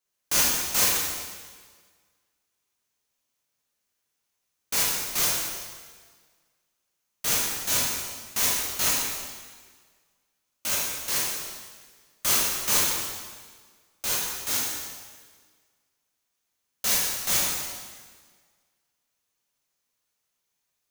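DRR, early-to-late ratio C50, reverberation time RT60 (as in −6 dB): −6.5 dB, −1.5 dB, 1.6 s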